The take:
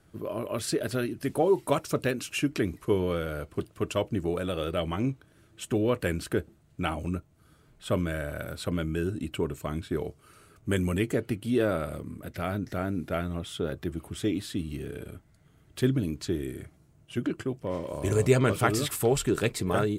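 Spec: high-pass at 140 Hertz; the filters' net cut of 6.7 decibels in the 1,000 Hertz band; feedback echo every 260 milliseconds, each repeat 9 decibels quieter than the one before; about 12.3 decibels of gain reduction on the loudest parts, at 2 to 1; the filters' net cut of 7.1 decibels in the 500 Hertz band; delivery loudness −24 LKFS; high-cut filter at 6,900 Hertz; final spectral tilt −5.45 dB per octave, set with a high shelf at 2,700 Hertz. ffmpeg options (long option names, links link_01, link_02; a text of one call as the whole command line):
ffmpeg -i in.wav -af "highpass=140,lowpass=6900,equalizer=frequency=500:width_type=o:gain=-8,equalizer=frequency=1000:width_type=o:gain=-6,highshelf=frequency=2700:gain=-5.5,acompressor=threshold=-45dB:ratio=2,aecho=1:1:260|520|780|1040:0.355|0.124|0.0435|0.0152,volume=19.5dB" out.wav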